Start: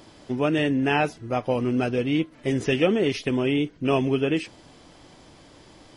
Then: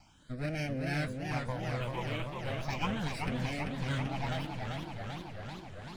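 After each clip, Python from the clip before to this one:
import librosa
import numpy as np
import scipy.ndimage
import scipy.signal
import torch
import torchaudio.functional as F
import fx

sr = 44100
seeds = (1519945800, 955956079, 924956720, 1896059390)

y = fx.lower_of_two(x, sr, delay_ms=1.3)
y = fx.phaser_stages(y, sr, stages=8, low_hz=200.0, high_hz=1100.0, hz=0.36, feedback_pct=5)
y = fx.echo_warbled(y, sr, ms=384, feedback_pct=75, rate_hz=2.8, cents=163, wet_db=-4.5)
y = y * 10.0 ** (-7.5 / 20.0)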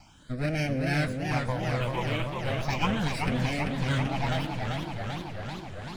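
y = x + 10.0 ** (-19.0 / 20.0) * np.pad(x, (int(110 * sr / 1000.0), 0))[:len(x)]
y = y * 10.0 ** (6.5 / 20.0)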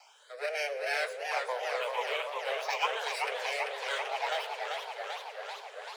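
y = scipy.signal.sosfilt(scipy.signal.cheby1(10, 1.0, 410.0, 'highpass', fs=sr, output='sos'), x)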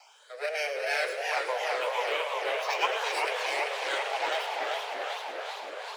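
y = fx.echo_split(x, sr, split_hz=1100.0, low_ms=336, high_ms=106, feedback_pct=52, wet_db=-10.0)
y = fx.echo_warbled(y, sr, ms=344, feedback_pct=57, rate_hz=2.8, cents=189, wet_db=-8)
y = y * 10.0 ** (2.0 / 20.0)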